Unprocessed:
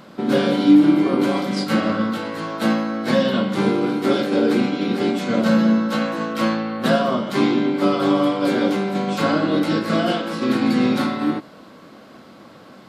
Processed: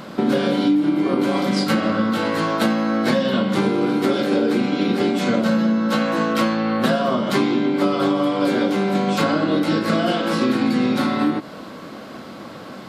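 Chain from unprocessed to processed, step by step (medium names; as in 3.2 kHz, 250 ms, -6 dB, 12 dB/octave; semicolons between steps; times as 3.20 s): compression 6:1, threshold -24 dBFS, peak gain reduction 15 dB; trim +8 dB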